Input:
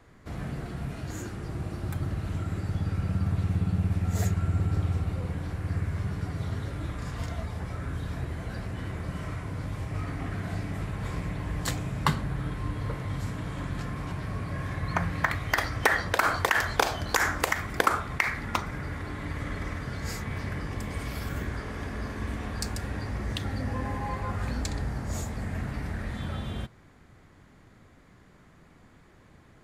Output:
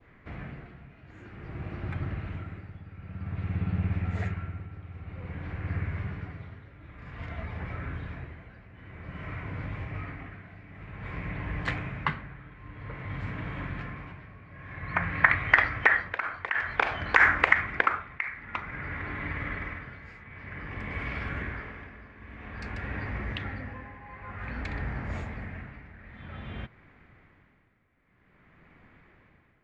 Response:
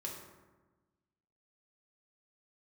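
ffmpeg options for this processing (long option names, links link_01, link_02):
-af "lowpass=frequency=2300:width_type=q:width=2.4,adynamicequalizer=threshold=0.0141:dfrequency=1600:dqfactor=0.8:tfrequency=1600:tqfactor=0.8:attack=5:release=100:ratio=0.375:range=2.5:mode=boostabove:tftype=bell,tremolo=f=0.52:d=0.82,volume=-2dB"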